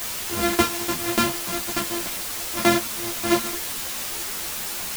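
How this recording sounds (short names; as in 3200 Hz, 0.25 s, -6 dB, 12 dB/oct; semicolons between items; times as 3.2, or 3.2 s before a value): a buzz of ramps at a fixed pitch in blocks of 128 samples; tremolo saw down 3.4 Hz, depth 100%; a quantiser's noise floor 6-bit, dither triangular; a shimmering, thickened sound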